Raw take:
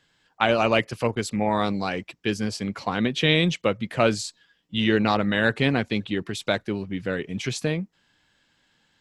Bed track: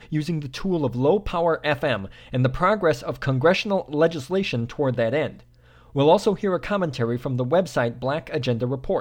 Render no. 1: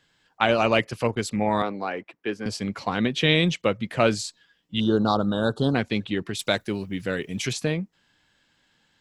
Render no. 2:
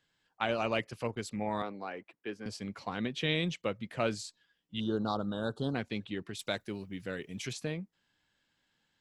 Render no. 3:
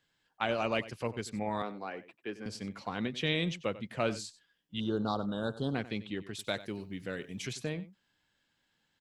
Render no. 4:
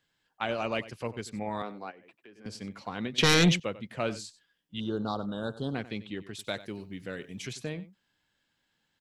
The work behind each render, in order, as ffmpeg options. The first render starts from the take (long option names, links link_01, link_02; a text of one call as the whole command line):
ffmpeg -i in.wav -filter_complex "[0:a]asettb=1/sr,asplit=3[link_01][link_02][link_03];[link_01]atrim=end=1.624[link_04];[link_02]atrim=start=1.62:end=2.46,asetpts=PTS-STARTPTS,afade=type=in:duration=0.004:curve=qsin,afade=type=out:start_time=0.836:duration=0.004:curve=qsin,acrossover=split=260 2400:gain=0.158 1 0.158[link_05][link_06][link_07];[link_05][link_06][link_07]amix=inputs=3:normalize=0[link_08];[link_03]atrim=start=2.456[link_09];[link_04][link_08]acrossfade=duration=0.004:curve1=hsin:curve2=qsin[link_10];[link_10][link_09]acrossfade=duration=0.004:curve1=qsin:curve2=hsin,asettb=1/sr,asplit=3[link_11][link_12][link_13];[link_11]atrim=end=4.804[link_14];[link_12]atrim=start=4.8:end=5.75,asetpts=PTS-STARTPTS,afade=type=in:duration=0.004:curve=qsin,afade=type=out:start_time=0.946:duration=0.004:curve=qsin,asuperstop=centerf=2200:order=8:qfactor=1.1[link_15];[link_13]atrim=start=5.746[link_16];[link_14][link_15]acrossfade=duration=0.004:curve1=hsin:curve2=qsin[link_17];[link_17][link_16]acrossfade=duration=0.004:curve1=qsin:curve2=hsin,asettb=1/sr,asplit=3[link_18][link_19][link_20];[link_18]atrim=end=6.394[link_21];[link_19]atrim=start=6.39:end=7.53,asetpts=PTS-STARTPTS,afade=type=in:duration=0.004:curve=qsin,afade=type=out:start_time=1.136:duration=0.004:curve=qsin,aemphasis=mode=production:type=50fm[link_22];[link_20]atrim=start=7.526[link_23];[link_21][link_22]acrossfade=duration=0.004:curve1=hsin:curve2=qsin[link_24];[link_24][link_23]acrossfade=duration=0.004:curve1=qsin:curve2=hsin" out.wav
ffmpeg -i in.wav -af "volume=-11dB" out.wav
ffmpeg -i in.wav -filter_complex "[0:a]asplit=2[link_01][link_02];[link_02]adelay=93.29,volume=-16dB,highshelf=frequency=4000:gain=-2.1[link_03];[link_01][link_03]amix=inputs=2:normalize=0" out.wav
ffmpeg -i in.wav -filter_complex "[0:a]asplit=3[link_01][link_02][link_03];[link_01]afade=type=out:start_time=1.9:duration=0.02[link_04];[link_02]acompressor=threshold=-50dB:ratio=6:attack=3.2:release=140:knee=1:detection=peak,afade=type=in:start_time=1.9:duration=0.02,afade=type=out:start_time=2.44:duration=0.02[link_05];[link_03]afade=type=in:start_time=2.44:duration=0.02[link_06];[link_04][link_05][link_06]amix=inputs=3:normalize=0,asettb=1/sr,asplit=3[link_07][link_08][link_09];[link_07]atrim=end=3.184[link_10];[link_08]atrim=start=3.18:end=3.6,asetpts=PTS-STARTPTS,afade=type=in:duration=0.004:curve=qsin,afade=type=out:start_time=0.416:duration=0.004:curve=qsin,aeval=exprs='0.168*sin(PI/2*3.16*val(0)/0.168)':channel_layout=same[link_11];[link_09]atrim=start=3.596[link_12];[link_10][link_11]acrossfade=duration=0.004:curve1=hsin:curve2=qsin[link_13];[link_13][link_12]acrossfade=duration=0.004:curve1=qsin:curve2=hsin" out.wav